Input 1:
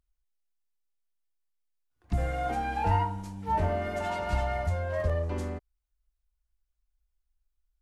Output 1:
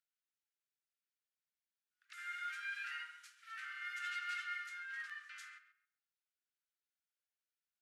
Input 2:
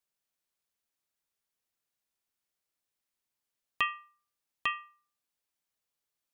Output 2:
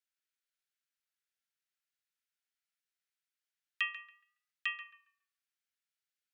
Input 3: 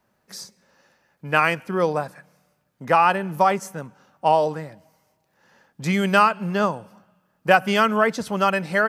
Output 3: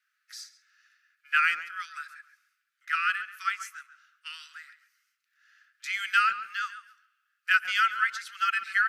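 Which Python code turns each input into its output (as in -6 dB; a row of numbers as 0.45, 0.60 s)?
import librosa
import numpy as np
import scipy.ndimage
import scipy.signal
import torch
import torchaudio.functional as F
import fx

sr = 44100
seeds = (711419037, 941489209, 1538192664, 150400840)

p1 = scipy.signal.sosfilt(scipy.signal.butter(16, 1300.0, 'highpass', fs=sr, output='sos'), x)
p2 = fx.high_shelf(p1, sr, hz=5700.0, db=-9.5)
p3 = p2 + fx.echo_tape(p2, sr, ms=137, feedback_pct=26, wet_db=-10.5, lp_hz=2300.0, drive_db=15.0, wow_cents=28, dry=0)
y = p3 * librosa.db_to_amplitude(-1.0)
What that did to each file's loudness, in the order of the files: -13.0, -4.0, -6.5 LU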